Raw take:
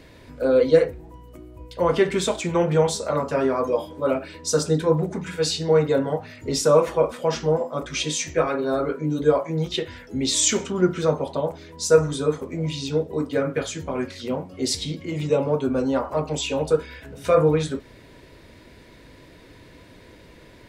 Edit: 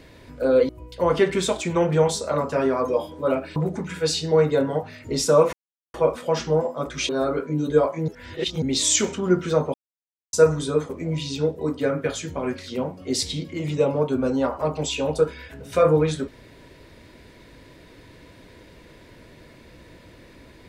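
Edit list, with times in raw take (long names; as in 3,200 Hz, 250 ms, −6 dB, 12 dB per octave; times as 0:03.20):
0:00.69–0:01.48: remove
0:04.35–0:04.93: remove
0:06.90: splice in silence 0.41 s
0:08.05–0:08.61: remove
0:09.60–0:10.14: reverse
0:11.26–0:11.85: silence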